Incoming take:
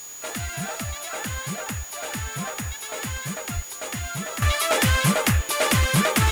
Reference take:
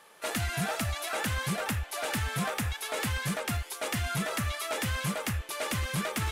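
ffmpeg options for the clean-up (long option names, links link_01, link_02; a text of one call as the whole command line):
ffmpeg -i in.wav -filter_complex "[0:a]bandreject=frequency=6800:width=30,asplit=3[link_01][link_02][link_03];[link_01]afade=type=out:start_time=3.55:duration=0.02[link_04];[link_02]highpass=frequency=140:width=0.5412,highpass=frequency=140:width=1.3066,afade=type=in:start_time=3.55:duration=0.02,afade=type=out:start_time=3.67:duration=0.02[link_05];[link_03]afade=type=in:start_time=3.67:duration=0.02[link_06];[link_04][link_05][link_06]amix=inputs=3:normalize=0,afwtdn=0.0056,asetnsamples=nb_out_samples=441:pad=0,asendcmd='4.42 volume volume -11.5dB',volume=0dB" out.wav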